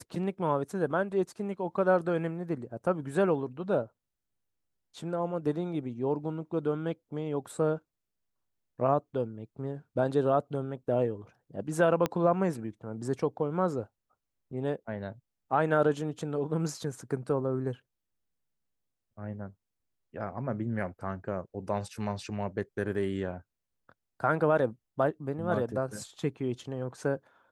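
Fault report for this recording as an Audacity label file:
12.060000	12.060000	pop -14 dBFS

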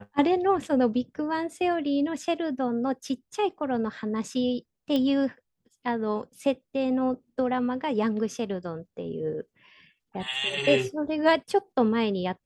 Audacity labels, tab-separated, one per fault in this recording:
4.960000	4.960000	pop -16 dBFS

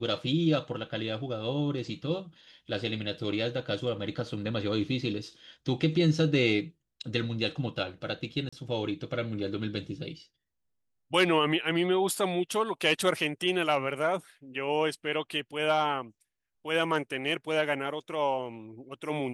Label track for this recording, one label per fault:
8.490000	8.530000	gap 35 ms

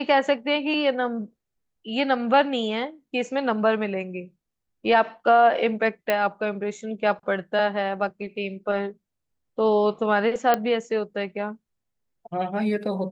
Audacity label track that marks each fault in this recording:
6.100000	6.100000	pop -9 dBFS
10.540000	10.540000	pop -8 dBFS

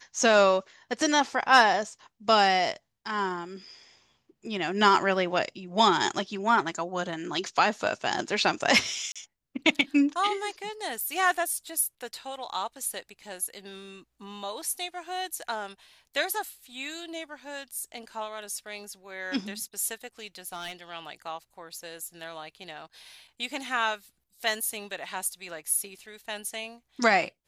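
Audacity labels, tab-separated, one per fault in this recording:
9.120000	9.160000	gap 36 ms
20.460000	20.720000	clipped -31 dBFS

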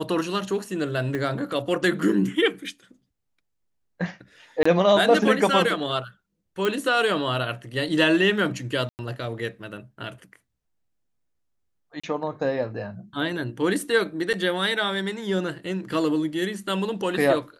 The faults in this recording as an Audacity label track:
1.150000	1.150000	pop -17 dBFS
4.630000	4.660000	gap 25 ms
6.650000	6.650000	pop -12 dBFS
8.890000	8.990000	gap 99 ms
12.000000	12.040000	gap 35 ms
14.330000	14.340000	gap 7.2 ms

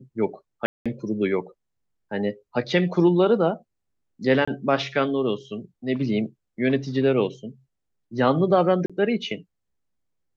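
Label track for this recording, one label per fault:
0.660000	0.860000	gap 0.196 s
4.450000	4.470000	gap 25 ms
8.860000	8.900000	gap 36 ms

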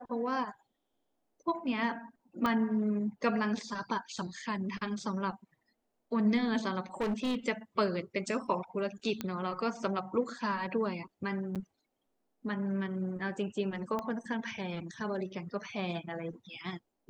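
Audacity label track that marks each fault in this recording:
2.460000	2.460000	pop -18 dBFS
7.000000	7.370000	clipped -28.5 dBFS
9.210000	9.210000	pop -19 dBFS
11.550000	11.560000	gap 7.6 ms
13.990000	13.990000	pop -22 dBFS

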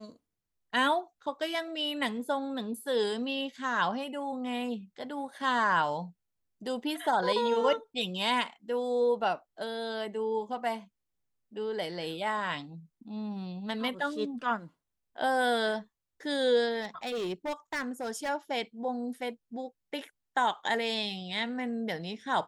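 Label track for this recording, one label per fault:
16.810000	18.300000	clipped -30 dBFS

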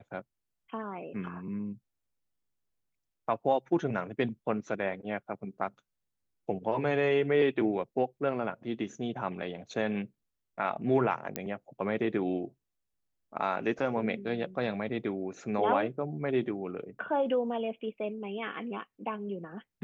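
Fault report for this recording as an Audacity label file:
11.360000	11.360000	pop -15 dBFS

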